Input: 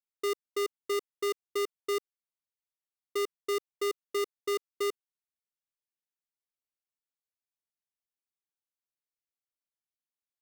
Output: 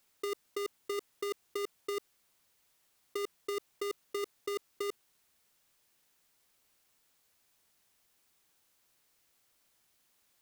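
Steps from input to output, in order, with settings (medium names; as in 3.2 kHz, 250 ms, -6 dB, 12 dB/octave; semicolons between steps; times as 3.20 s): compressor with a negative ratio -43 dBFS, ratio -1; trim +8.5 dB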